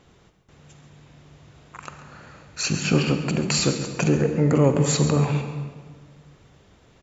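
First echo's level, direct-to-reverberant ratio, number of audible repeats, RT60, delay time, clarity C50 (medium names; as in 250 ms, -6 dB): -14.0 dB, 6.0 dB, 1, 1.6 s, 136 ms, 6.5 dB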